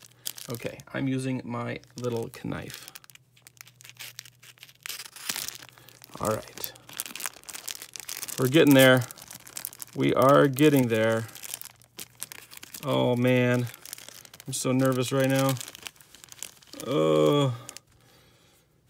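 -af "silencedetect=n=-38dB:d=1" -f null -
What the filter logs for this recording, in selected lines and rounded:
silence_start: 17.77
silence_end: 18.89 | silence_duration: 1.12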